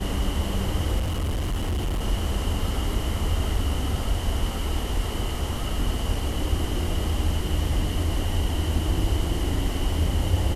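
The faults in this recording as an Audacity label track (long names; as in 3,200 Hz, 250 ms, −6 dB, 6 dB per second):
0.980000	2.020000	clipping −22.5 dBFS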